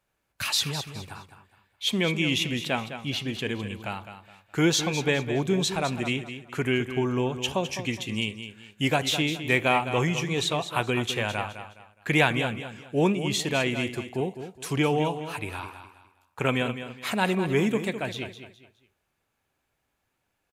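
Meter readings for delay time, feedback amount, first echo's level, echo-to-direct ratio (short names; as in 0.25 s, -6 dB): 0.208 s, 31%, -10.5 dB, -10.0 dB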